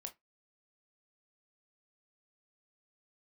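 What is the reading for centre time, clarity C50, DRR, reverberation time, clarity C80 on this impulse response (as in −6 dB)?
8 ms, 18.0 dB, 4.5 dB, 0.15 s, 30.5 dB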